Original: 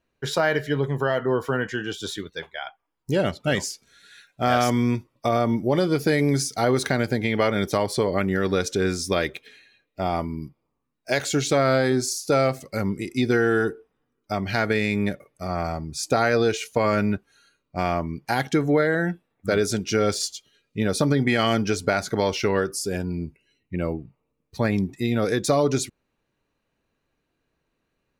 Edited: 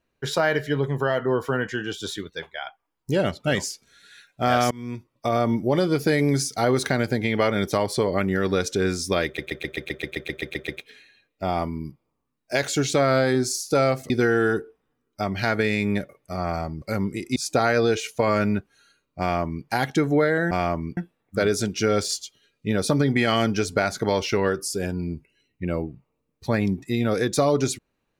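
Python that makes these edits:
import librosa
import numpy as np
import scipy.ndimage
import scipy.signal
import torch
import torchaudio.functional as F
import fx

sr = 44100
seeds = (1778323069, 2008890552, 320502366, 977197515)

y = fx.edit(x, sr, fx.fade_in_from(start_s=4.71, length_s=0.69, floor_db=-24.0),
    fx.stutter(start_s=9.25, slice_s=0.13, count=12),
    fx.move(start_s=12.67, length_s=0.54, to_s=15.93),
    fx.duplicate(start_s=17.77, length_s=0.46, to_s=19.08), tone=tone)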